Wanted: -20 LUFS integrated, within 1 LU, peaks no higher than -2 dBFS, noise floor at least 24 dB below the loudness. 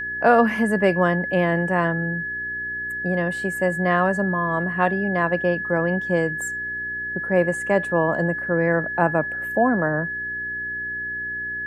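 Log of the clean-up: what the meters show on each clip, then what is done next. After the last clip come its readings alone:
hum 60 Hz; highest harmonic 420 Hz; hum level -44 dBFS; steady tone 1.7 kHz; tone level -26 dBFS; loudness -22.0 LUFS; peak level -4.0 dBFS; loudness target -20.0 LUFS
-> de-hum 60 Hz, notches 7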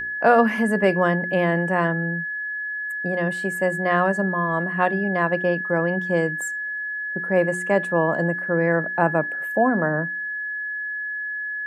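hum not found; steady tone 1.7 kHz; tone level -26 dBFS
-> band-stop 1.7 kHz, Q 30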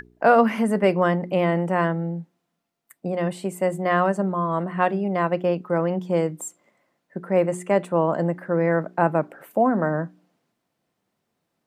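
steady tone not found; loudness -22.5 LUFS; peak level -5.0 dBFS; loudness target -20.0 LUFS
-> trim +2.5 dB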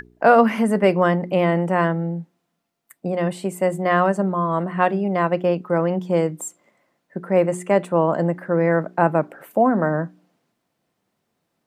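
loudness -20.0 LUFS; peak level -2.5 dBFS; noise floor -75 dBFS

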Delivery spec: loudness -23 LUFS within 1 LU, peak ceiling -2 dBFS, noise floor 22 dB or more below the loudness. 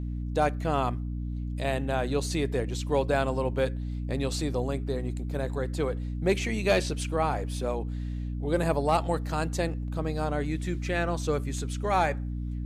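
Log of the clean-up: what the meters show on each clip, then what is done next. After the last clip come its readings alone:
hum 60 Hz; highest harmonic 300 Hz; hum level -30 dBFS; loudness -29.5 LUFS; peak level -13.0 dBFS; loudness target -23.0 LUFS
-> de-hum 60 Hz, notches 5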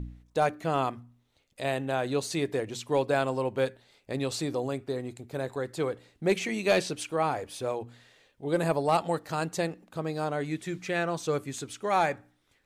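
hum not found; loudness -30.5 LUFS; peak level -14.0 dBFS; loudness target -23.0 LUFS
-> trim +7.5 dB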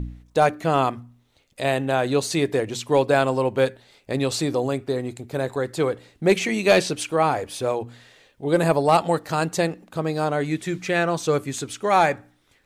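loudness -23.0 LUFS; peak level -6.5 dBFS; noise floor -62 dBFS

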